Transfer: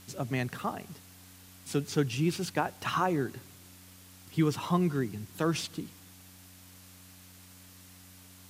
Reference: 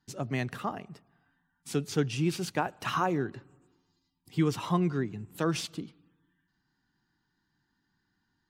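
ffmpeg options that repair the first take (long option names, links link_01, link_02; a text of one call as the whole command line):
ffmpeg -i in.wav -af "bandreject=frequency=92.1:width_type=h:width=4,bandreject=frequency=184.2:width_type=h:width=4,bandreject=frequency=276.3:width_type=h:width=4,afwtdn=0.002" out.wav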